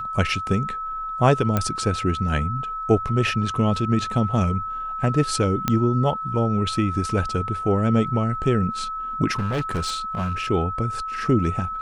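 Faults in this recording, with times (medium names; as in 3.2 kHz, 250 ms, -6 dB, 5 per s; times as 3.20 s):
whine 1.3 kHz -27 dBFS
1.57 s: pop -8 dBFS
5.68 s: pop -6 dBFS
9.38–10.41 s: clipped -20.5 dBFS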